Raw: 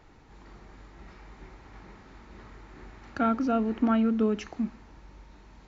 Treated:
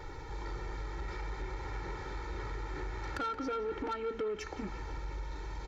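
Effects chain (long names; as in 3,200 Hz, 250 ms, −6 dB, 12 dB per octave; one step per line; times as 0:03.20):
notch filter 2,800 Hz, Q 9
comb filter 2.2 ms, depth 93%
downward compressor 4 to 1, threshold −41 dBFS, peak gain reduction 17.5 dB
soft clipping −38.5 dBFS, distortion −14 dB
on a send: feedback echo with a band-pass in the loop 174 ms, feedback 80%, band-pass 2,100 Hz, level −12 dB
on the sum: level +8 dB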